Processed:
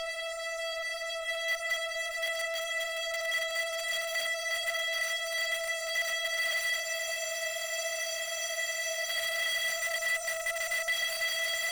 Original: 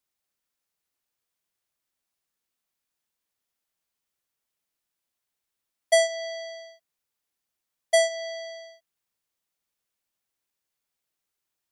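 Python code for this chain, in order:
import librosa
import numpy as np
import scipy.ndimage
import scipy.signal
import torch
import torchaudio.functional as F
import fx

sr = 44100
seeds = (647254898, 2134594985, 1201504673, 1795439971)

p1 = scipy.ndimage.median_filter(x, 3, mode='constant')
p2 = fx.paulstretch(p1, sr, seeds[0], factor=43.0, window_s=1.0, from_s=7.64)
p3 = fx.spec_box(p2, sr, start_s=9.63, length_s=1.34, low_hz=1200.0, high_hz=5300.0, gain_db=-23)
p4 = fx.echo_feedback(p3, sr, ms=197, feedback_pct=21, wet_db=-13.0)
p5 = (np.mod(10.0 ** (23.5 / 20.0) * p4 + 1.0, 2.0) - 1.0) / 10.0 ** (23.5 / 20.0)
p6 = fx.low_shelf(p5, sr, hz=480.0, db=-4.5)
p7 = p6 + fx.echo_single(p6, sr, ms=619, db=-21.0, dry=0)
p8 = fx.tube_stage(p7, sr, drive_db=37.0, bias=0.6)
p9 = fx.peak_eq(p8, sr, hz=2100.0, db=11.5, octaves=1.9)
y = fx.spec_freeze(p9, sr, seeds[1], at_s=6.84, hold_s=2.22)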